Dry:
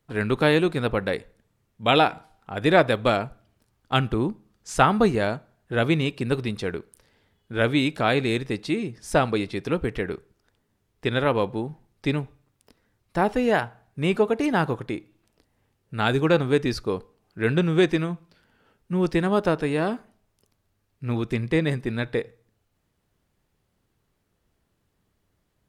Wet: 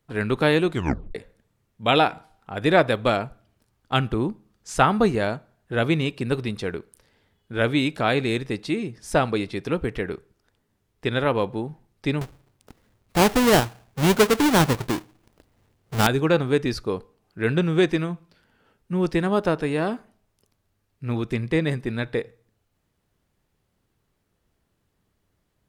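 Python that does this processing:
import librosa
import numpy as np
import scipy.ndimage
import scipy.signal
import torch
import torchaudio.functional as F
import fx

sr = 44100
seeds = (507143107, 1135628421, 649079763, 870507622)

y = fx.halfwave_hold(x, sr, at=(12.21, 16.07))
y = fx.edit(y, sr, fx.tape_stop(start_s=0.71, length_s=0.44), tone=tone)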